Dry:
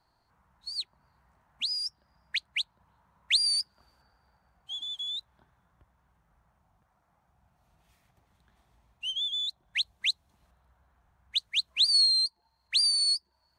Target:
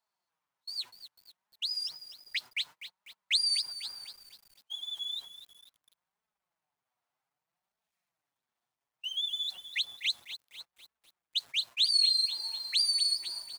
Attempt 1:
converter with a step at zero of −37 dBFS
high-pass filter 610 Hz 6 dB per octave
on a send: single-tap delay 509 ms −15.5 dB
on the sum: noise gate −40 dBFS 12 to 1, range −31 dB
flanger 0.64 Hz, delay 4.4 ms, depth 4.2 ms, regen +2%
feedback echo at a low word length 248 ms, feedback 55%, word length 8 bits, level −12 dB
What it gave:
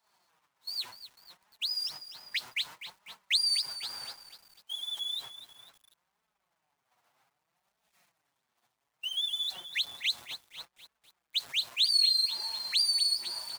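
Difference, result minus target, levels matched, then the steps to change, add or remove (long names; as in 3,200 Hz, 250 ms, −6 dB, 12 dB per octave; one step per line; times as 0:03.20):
converter with a step at zero: distortion +9 dB
change: converter with a step at zero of −46.5 dBFS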